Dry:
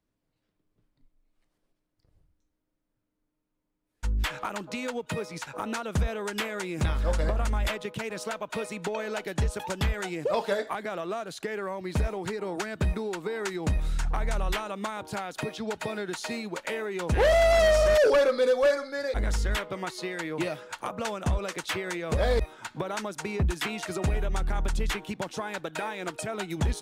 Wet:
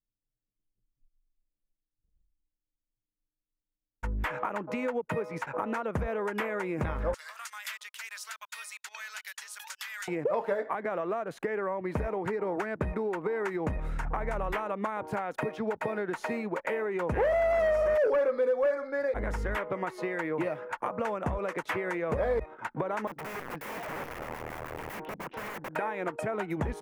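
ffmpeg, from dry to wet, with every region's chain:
-filter_complex "[0:a]asettb=1/sr,asplit=3[a][b][c];[a]atrim=end=7.144[d];[b]atrim=start=7.14:end=10.08,asetpts=PTS-STARTPTS,afade=t=in:d=0.004:c=qsin,afade=t=out:st=2.936:d=0.004:c=qsin,highpass=f=1.5k:w=0.5412,highpass=f=1.5k:w=1.3066,highshelf=f=3.1k:t=q:w=1.5:g=12,acompressor=threshold=-35dB:ratio=1.5:attack=3.2:release=140:knee=1:detection=peak[e];[c]atrim=start=10.076[f];[d][e]acrossfade=d=0.004:c1=hsin:c2=qsin[g];[g][f]acrossfade=d=0.004:c1=qsin:c2=hsin,asettb=1/sr,asplit=3[h][i][j];[h]atrim=end=23.074[k];[i]atrim=start=23.07:end=25.76,asetpts=PTS-STARTPTS,afade=t=in:d=0.004:c=qsin,afade=t=out:st=2.686:d=0.004:c=qsin,lowpass=f=3.8k:w=0.5412,lowpass=f=3.8k:w=1.3066,aeval=exprs='(tanh(28.2*val(0)+0.15)-tanh(0.15))/28.2':c=same,aeval=exprs='(mod(56.2*val(0)+1,2)-1)/56.2':c=same[l];[j]atrim=start=25.756[m];[k][l]acrossfade=d=0.004:c1=hsin:c2=qsin[n];[n][m]acrossfade=d=0.004:c1=qsin:c2=hsin,anlmdn=0.01,equalizer=f=125:t=o:w=1:g=5,equalizer=f=250:t=o:w=1:g=5,equalizer=f=500:t=o:w=1:g=9,equalizer=f=1k:t=o:w=1:g=8,equalizer=f=2k:t=o:w=1:g=8,equalizer=f=4k:t=o:w=1:g=-10,equalizer=f=8k:t=o:w=1:g=-6,acompressor=threshold=-26dB:ratio=2.5,volume=-4dB"

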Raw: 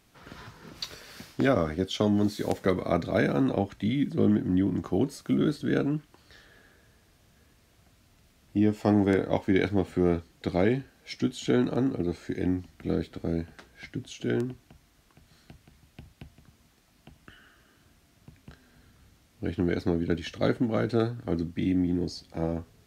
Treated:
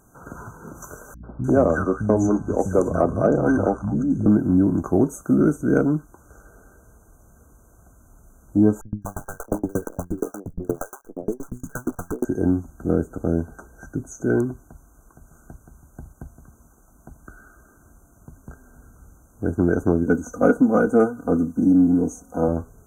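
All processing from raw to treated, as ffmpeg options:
-filter_complex "[0:a]asettb=1/sr,asplit=3[a][b][c];[a]atrim=end=1.144[d];[b]atrim=start=1.14:end=4.26,asetpts=PTS-STARTPTS,afade=t=in:d=0.004:c=qsin,afade=t=out:st=3.116:d=0.004:c=qsin,lowpass=7.7k,acrossover=split=190|1200[e][f][g];[f]adelay=90[h];[g]adelay=300[i];[e][h][i]amix=inputs=3:normalize=0,atrim=end_sample=137592,aeval=exprs='val(0)+0.00316*(sin(2*PI*60*n/s)+sin(2*PI*2*60*n/s)/2+sin(2*PI*3*60*n/s)/3+sin(2*PI*4*60*n/s)/4+sin(2*PI*5*60*n/s)/5)':c=same[j];[c]atrim=start=4.256[k];[d][j]acrossfade=d=0.004:c1=hsin:c2=qsin[l];[l][k]acrossfade=d=0.004:c1=qsin:c2=hsin,asettb=1/sr,asplit=3[m][n][o];[m]atrim=end=8.814[p];[n]atrim=start=8.81:end=12.25,asetpts=PTS-STARTPTS,afade=t=in:d=0.004:c=qsin,afade=t=out:st=3.436:d=0.004:c=qsin,acrusher=bits=6:dc=4:mix=0:aa=0.000001,acrossover=split=200|670[q][r][s];[s]adelay=210[t];[r]adelay=630[u];[q][u][t]amix=inputs=3:normalize=0,atrim=end_sample=151704,aeval=exprs='val(0)*pow(10,-34*if(lt(mod(8.5*n/s,1),2*abs(8.5)/1000),1-mod(8.5*n/s,1)/(2*abs(8.5)/1000),(mod(8.5*n/s,1)-2*abs(8.5)/1000)/(1-2*abs(8.5)/1000))/20)':c=same[v];[o]atrim=start=12.246[w];[p][v]acrossfade=d=0.004:c1=hsin:c2=qsin[x];[x][w]acrossfade=d=0.004:c1=qsin:c2=hsin,asettb=1/sr,asplit=3[y][z][aa];[y]atrim=end=20.064[ab];[z]atrim=start=20.06:end=22.48,asetpts=PTS-STARTPTS,afade=t=in:d=0.004:c=qsin,afade=t=out:st=2.416:d=0.004:c=qsin,highpass=f=120:p=1,aecho=1:1:4.1:0.78,atrim=end_sample=106722[ac];[aa]atrim=start=22.476[ad];[ab][ac]acrossfade=d=0.004:c1=hsin:c2=qsin[ae];[ae][ad]acrossfade=d=0.004:c1=qsin:c2=hsin,afftfilt=real='re*(1-between(b*sr/4096,1600,5900))':imag='im*(1-between(b*sr/4096,1600,5900))':win_size=4096:overlap=0.75,asubboost=boost=3.5:cutoff=51,acontrast=86,volume=1.5dB"

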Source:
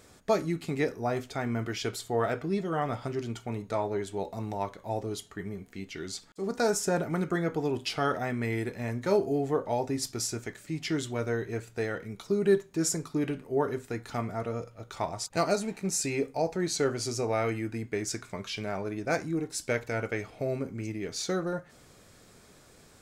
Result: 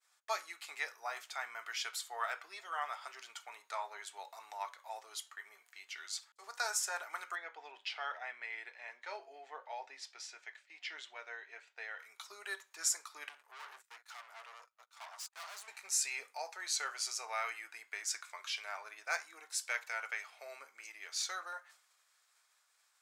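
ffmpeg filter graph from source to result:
-filter_complex "[0:a]asettb=1/sr,asplit=3[a][b][c];[a]atrim=end=7.354[d];[b]atrim=start=7.35:end=11.99,asetpts=PTS-STARTPTS,afade=t=in:d=0.004:c=qsin,afade=t=out:st=4.636:d=0.004:c=qsin,highpass=140,lowpass=3k,equalizer=f=1.2k:t=o:w=0.73:g=-9[e];[c]atrim=start=11.986[f];[d][e]acrossfade=d=0.004:c1=hsin:c2=qsin[g];[g][f]acrossfade=d=0.004:c1=qsin:c2=hsin,asettb=1/sr,asplit=3[h][i][j];[h]atrim=end=13.294[k];[i]atrim=start=13.29:end=15.68,asetpts=PTS-STARTPTS,afade=t=in:d=0.004:c=qsin,afade=t=out:st=2.386:d=0.004:c=qsin,acompressor=mode=upward:threshold=-35dB:ratio=2.5:attack=3.2:release=140:knee=2.83:detection=peak,aeval=exprs='(tanh(89.1*val(0)+0.65)-tanh(0.65))/89.1':c=same,agate=range=-21dB:threshold=-47dB:ratio=16:release=100:detection=peak[l];[j]atrim=start=15.676[m];[k][l]acrossfade=d=0.004:c1=hsin:c2=qsin[n];[n][m]acrossfade=d=0.004:c1=qsin:c2=hsin,agate=range=-33dB:threshold=-47dB:ratio=3:detection=peak,highpass=f=940:w=0.5412,highpass=f=940:w=1.3066,volume=-2dB"

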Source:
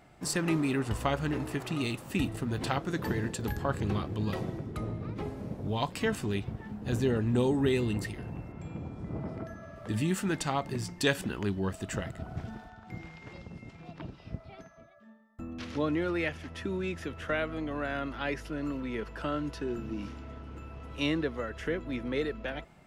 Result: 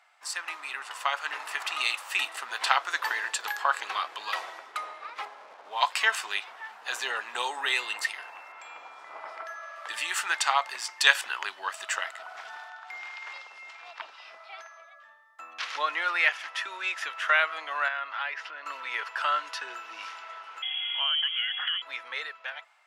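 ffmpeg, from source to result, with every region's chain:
-filter_complex "[0:a]asettb=1/sr,asplit=3[a][b][c];[a]atrim=end=5.254[d];[b]atrim=start=5.25:end=5.81,asetpts=PTS-STARTPTS,afade=t=in:d=0.004:c=qsin,afade=t=out:st=0.556:d=0.004:c=qsin,lowpass=f=1.1k:p=1,aeval=exprs='sgn(val(0))*max(abs(val(0))-0.00106,0)':c=same[e];[c]atrim=start=5.806[f];[d][e]acrossfade=d=0.004:c1=hsin:c2=qsin[g];[g][f]acrossfade=d=0.004:c1=qsin:c2=hsin,asettb=1/sr,asplit=3[h][i][j];[h]atrim=end=17.884[k];[i]atrim=start=17.88:end=18.66,asetpts=PTS-STARTPTS,afade=t=in:d=0.004:c=qsin,afade=t=out:st=0.776:d=0.004:c=qsin,lowpass=3.5k,acompressor=threshold=-37dB:ratio=4:attack=3.2:release=140:knee=1:detection=peak[l];[j]atrim=start=18.656[m];[k][l]acrossfade=d=0.004:c1=hsin:c2=qsin[n];[n][m]acrossfade=d=0.004:c1=qsin:c2=hsin,asettb=1/sr,asplit=3[o][p][q];[o]atrim=end=20.624[r];[p]atrim=start=20.62:end=21.82,asetpts=PTS-STARTPTS,afade=t=in:d=0.004:c=qsin,afade=t=out:st=1.196:d=0.004:c=qsin,lowpass=f=2.9k:t=q:w=0.5098,lowpass=f=2.9k:t=q:w=0.6013,lowpass=f=2.9k:t=q:w=0.9,lowpass=f=2.9k:t=q:w=2.563,afreqshift=-3400,acompressor=threshold=-38dB:ratio=3:attack=3.2:release=140:knee=1:detection=peak[s];[q]atrim=start=21.816[t];[r][s]acrossfade=d=0.004:c1=hsin:c2=qsin[u];[u][t]acrossfade=d=0.004:c1=qsin:c2=hsin,highpass=f=930:w=0.5412,highpass=f=930:w=1.3066,highshelf=f=9.3k:g=-11.5,dynaudnorm=f=280:g=9:m=10.5dB,volume=2dB"

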